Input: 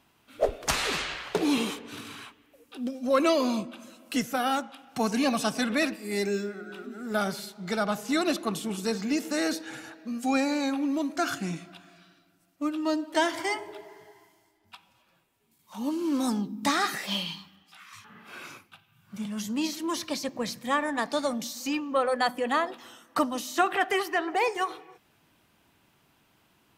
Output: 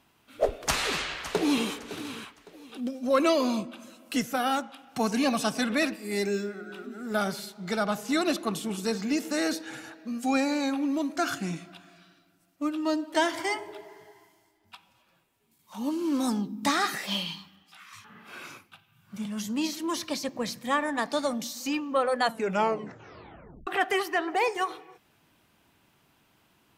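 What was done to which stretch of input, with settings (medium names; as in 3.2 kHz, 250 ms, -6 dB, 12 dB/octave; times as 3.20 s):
0.60–1.68 s: echo throw 560 ms, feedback 30%, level -13.5 dB
22.21 s: tape stop 1.46 s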